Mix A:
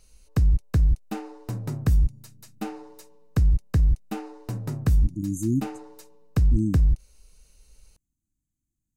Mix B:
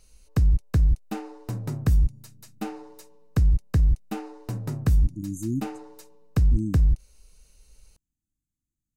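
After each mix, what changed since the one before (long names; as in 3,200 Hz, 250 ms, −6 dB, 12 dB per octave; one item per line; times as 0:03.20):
speech −4.0 dB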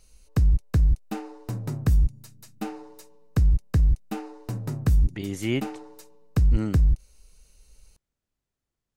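speech: remove linear-phase brick-wall band-stop 350–6,000 Hz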